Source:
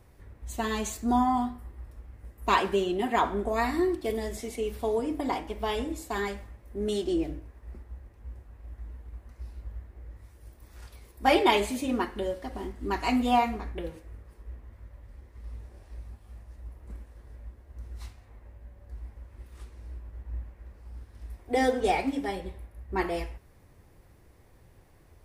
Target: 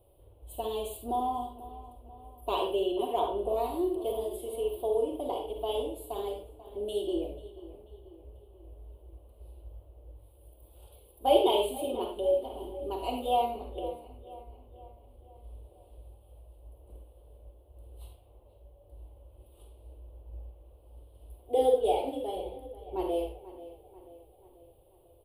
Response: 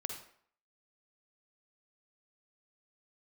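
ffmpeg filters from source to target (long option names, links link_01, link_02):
-filter_complex "[0:a]firequalizer=gain_entry='entry(120,0);entry(180,-12);entry(320,4);entry(570,11);entry(1800,-25);entry(3000,8);entry(5800,-23);entry(9600,9)':delay=0.05:min_phase=1,asplit=2[link_01][link_02];[link_02]adelay=488,lowpass=frequency=3500:poles=1,volume=-16dB,asplit=2[link_03][link_04];[link_04]adelay=488,lowpass=frequency=3500:poles=1,volume=0.53,asplit=2[link_05][link_06];[link_06]adelay=488,lowpass=frequency=3500:poles=1,volume=0.53,asplit=2[link_07][link_08];[link_08]adelay=488,lowpass=frequency=3500:poles=1,volume=0.53,asplit=2[link_09][link_10];[link_10]adelay=488,lowpass=frequency=3500:poles=1,volume=0.53[link_11];[link_01][link_03][link_05][link_07][link_09][link_11]amix=inputs=6:normalize=0[link_12];[1:a]atrim=start_sample=2205,afade=type=out:start_time=0.19:duration=0.01,atrim=end_sample=8820,asetrate=52920,aresample=44100[link_13];[link_12][link_13]afir=irnorm=-1:irlink=0,volume=-5.5dB"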